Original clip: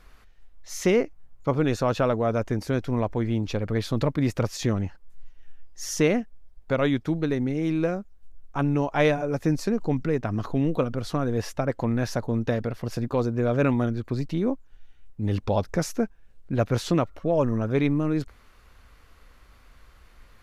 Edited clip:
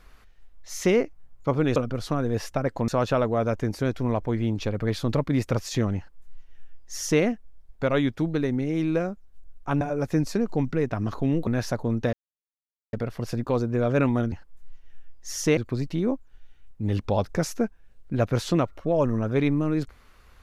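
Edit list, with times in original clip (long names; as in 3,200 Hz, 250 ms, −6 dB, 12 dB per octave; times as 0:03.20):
0:04.85–0:06.10: duplicate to 0:13.96
0:08.69–0:09.13: remove
0:10.79–0:11.91: move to 0:01.76
0:12.57: splice in silence 0.80 s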